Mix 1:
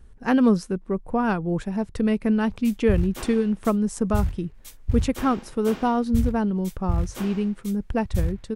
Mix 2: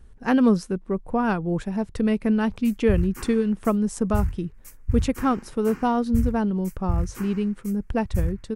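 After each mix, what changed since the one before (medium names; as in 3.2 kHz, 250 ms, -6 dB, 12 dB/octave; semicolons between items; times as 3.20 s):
background: add static phaser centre 1.5 kHz, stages 4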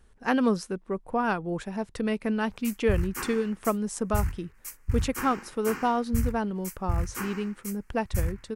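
background +7.0 dB; master: add bass shelf 300 Hz -11 dB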